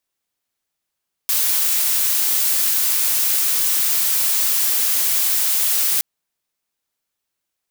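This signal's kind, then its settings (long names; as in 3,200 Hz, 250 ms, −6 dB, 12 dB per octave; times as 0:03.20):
noise blue, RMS −18 dBFS 4.72 s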